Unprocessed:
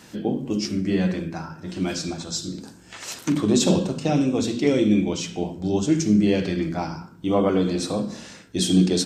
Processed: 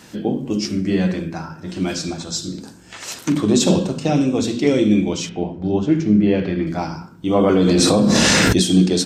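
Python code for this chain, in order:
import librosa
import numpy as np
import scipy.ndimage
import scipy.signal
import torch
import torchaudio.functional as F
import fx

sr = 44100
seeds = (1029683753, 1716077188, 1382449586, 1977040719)

y = fx.lowpass(x, sr, hz=2500.0, slope=12, at=(5.29, 6.67))
y = fx.env_flatten(y, sr, amount_pct=100, at=(7.35, 8.62))
y = F.gain(torch.from_numpy(y), 3.5).numpy()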